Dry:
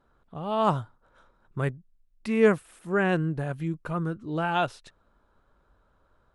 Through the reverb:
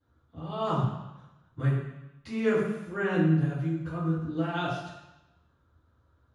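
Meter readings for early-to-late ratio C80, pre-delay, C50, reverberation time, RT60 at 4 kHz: 4.0 dB, 3 ms, 1.5 dB, 0.90 s, 1.0 s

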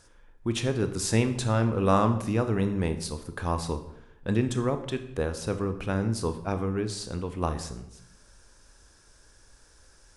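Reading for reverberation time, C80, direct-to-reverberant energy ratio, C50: 0.85 s, 14.0 dB, 8.5 dB, 11.5 dB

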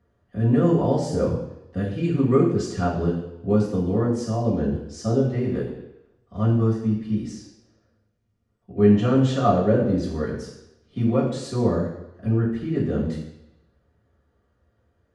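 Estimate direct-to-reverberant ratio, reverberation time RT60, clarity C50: −8.0 dB, 0.85 s, 4.5 dB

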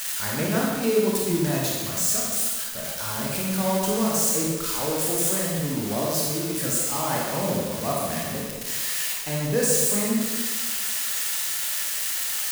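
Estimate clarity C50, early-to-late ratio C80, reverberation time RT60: −1.5 dB, 1.5 dB, 1.4 s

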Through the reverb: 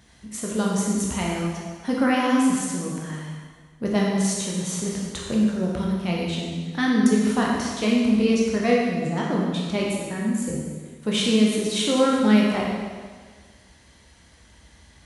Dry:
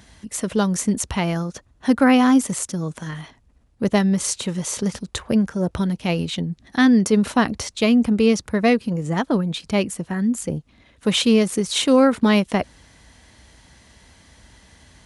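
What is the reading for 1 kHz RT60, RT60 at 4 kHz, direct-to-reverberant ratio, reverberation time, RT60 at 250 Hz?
1.6 s, 1.5 s, −3.5 dB, 1.6 s, 1.7 s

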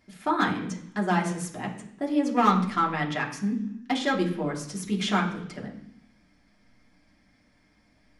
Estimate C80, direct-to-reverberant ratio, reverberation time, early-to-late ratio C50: 12.0 dB, −2.5 dB, 0.70 s, 9.5 dB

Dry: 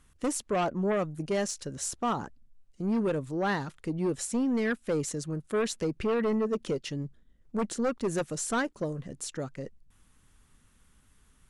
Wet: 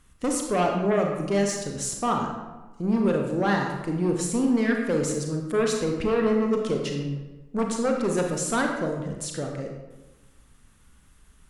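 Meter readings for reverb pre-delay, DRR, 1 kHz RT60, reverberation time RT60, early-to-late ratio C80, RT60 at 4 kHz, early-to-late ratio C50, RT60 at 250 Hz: 30 ms, 1.5 dB, 1.1 s, 1.2 s, 5.5 dB, 0.70 s, 3.5 dB, 1.2 s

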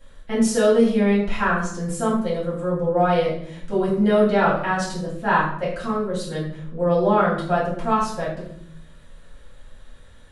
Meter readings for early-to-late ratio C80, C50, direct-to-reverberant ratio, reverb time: 7.5 dB, 4.0 dB, −8.5 dB, 0.65 s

